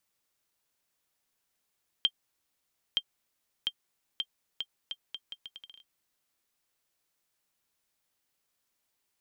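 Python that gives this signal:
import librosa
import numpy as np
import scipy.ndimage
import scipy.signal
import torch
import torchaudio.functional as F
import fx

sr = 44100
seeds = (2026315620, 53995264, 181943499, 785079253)

y = fx.bouncing_ball(sr, first_gap_s=0.92, ratio=0.76, hz=3170.0, decay_ms=58.0, level_db=-13.5)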